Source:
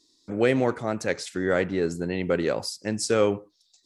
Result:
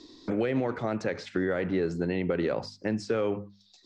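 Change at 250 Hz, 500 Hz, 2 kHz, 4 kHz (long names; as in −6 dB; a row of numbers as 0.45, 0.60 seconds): −2.0, −4.5, −5.5, −8.5 decibels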